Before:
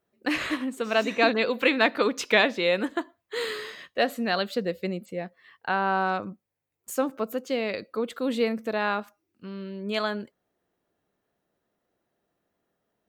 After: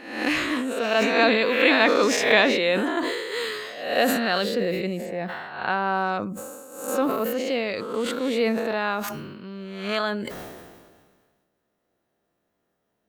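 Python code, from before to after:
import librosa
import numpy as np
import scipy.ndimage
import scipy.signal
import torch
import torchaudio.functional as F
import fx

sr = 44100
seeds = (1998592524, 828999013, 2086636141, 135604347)

y = fx.spec_swells(x, sr, rise_s=0.72)
y = fx.sustainer(y, sr, db_per_s=35.0)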